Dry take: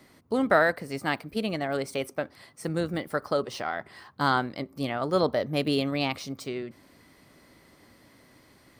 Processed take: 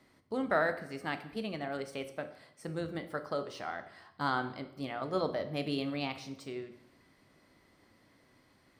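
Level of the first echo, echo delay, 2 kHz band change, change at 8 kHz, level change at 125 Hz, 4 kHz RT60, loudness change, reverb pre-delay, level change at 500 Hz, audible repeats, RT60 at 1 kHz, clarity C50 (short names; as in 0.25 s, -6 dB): none, none, -8.0 dB, -11.5 dB, -8.5 dB, 0.70 s, -8.0 dB, 5 ms, -8.0 dB, none, 0.80 s, 12.5 dB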